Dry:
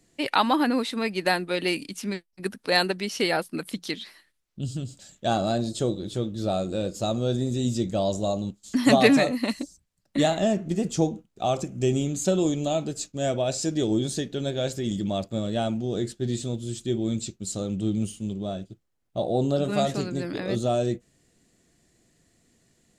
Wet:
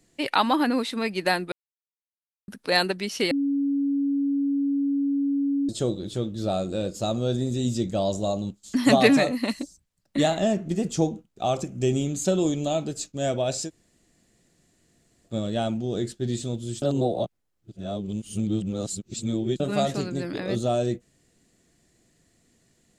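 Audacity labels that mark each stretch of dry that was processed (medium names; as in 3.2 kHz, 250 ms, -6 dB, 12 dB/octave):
1.520000	2.480000	mute
3.310000	5.690000	bleep 280 Hz -21 dBFS
13.660000	15.290000	room tone, crossfade 0.10 s
16.820000	19.600000	reverse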